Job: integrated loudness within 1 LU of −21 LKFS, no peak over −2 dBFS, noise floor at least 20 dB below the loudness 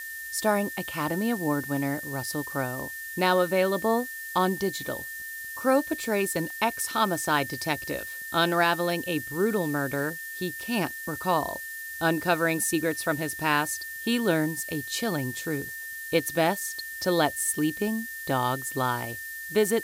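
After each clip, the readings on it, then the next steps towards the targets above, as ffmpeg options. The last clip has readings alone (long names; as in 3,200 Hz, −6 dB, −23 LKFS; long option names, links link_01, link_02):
interfering tone 1,800 Hz; level of the tone −36 dBFS; background noise floor −38 dBFS; target noise floor −48 dBFS; integrated loudness −27.5 LKFS; sample peak −9.5 dBFS; target loudness −21.0 LKFS
→ -af "bandreject=frequency=1800:width=30"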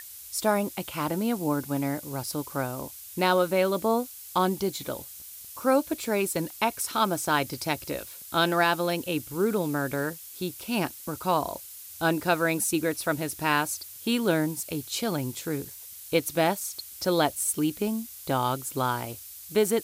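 interfering tone none found; background noise floor −44 dBFS; target noise floor −48 dBFS
→ -af "afftdn=noise_reduction=6:noise_floor=-44"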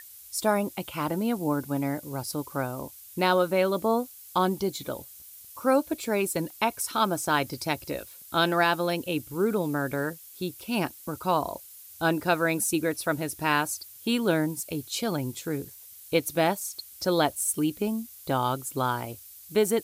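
background noise floor −48 dBFS; integrated loudness −28.0 LKFS; sample peak −10.0 dBFS; target loudness −21.0 LKFS
→ -af "volume=7dB"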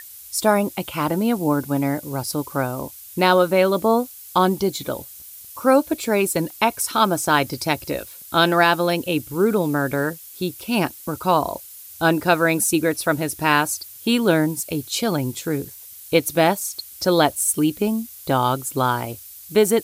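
integrated loudness −21.0 LKFS; sample peak −3.0 dBFS; background noise floor −41 dBFS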